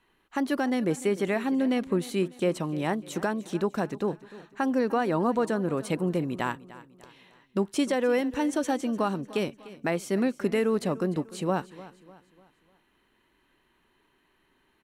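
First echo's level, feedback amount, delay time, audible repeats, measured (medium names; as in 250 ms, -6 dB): -18.0 dB, 43%, 299 ms, 3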